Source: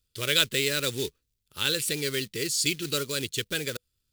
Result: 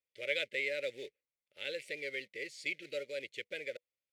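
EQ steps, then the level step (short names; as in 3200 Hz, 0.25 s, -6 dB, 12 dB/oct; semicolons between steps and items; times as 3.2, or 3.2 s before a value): double band-pass 1100 Hz, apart 1.9 oct; 0.0 dB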